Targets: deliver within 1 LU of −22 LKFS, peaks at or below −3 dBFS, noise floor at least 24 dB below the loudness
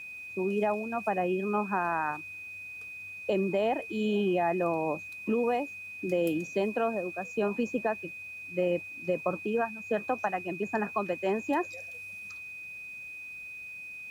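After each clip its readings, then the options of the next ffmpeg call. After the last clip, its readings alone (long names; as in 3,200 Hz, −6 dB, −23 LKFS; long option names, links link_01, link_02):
interfering tone 2,500 Hz; level of the tone −40 dBFS; integrated loudness −31.5 LKFS; sample peak −15.0 dBFS; target loudness −22.0 LKFS
→ -af "bandreject=frequency=2500:width=30"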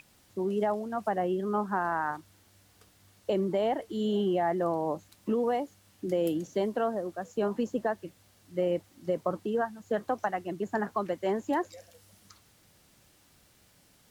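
interfering tone none found; integrated loudness −31.0 LKFS; sample peak −15.5 dBFS; target loudness −22.0 LKFS
→ -af "volume=9dB"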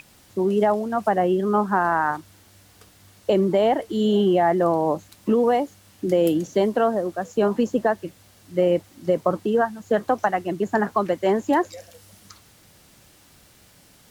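integrated loudness −22.0 LKFS; sample peak −6.5 dBFS; background noise floor −54 dBFS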